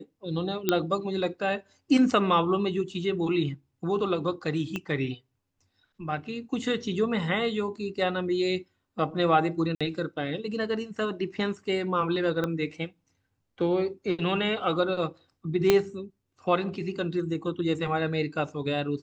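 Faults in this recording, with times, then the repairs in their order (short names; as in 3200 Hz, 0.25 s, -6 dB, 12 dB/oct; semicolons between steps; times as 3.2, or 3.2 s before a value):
0.69 pop -8 dBFS
4.76 pop -18 dBFS
9.75–9.81 gap 56 ms
12.44 pop -16 dBFS
15.7 pop -6 dBFS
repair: de-click; interpolate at 9.75, 56 ms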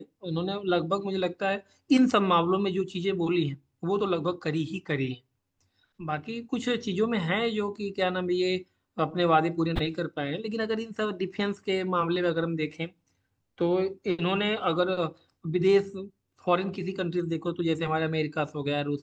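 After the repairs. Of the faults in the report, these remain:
0.69 pop
4.76 pop
12.44 pop
15.7 pop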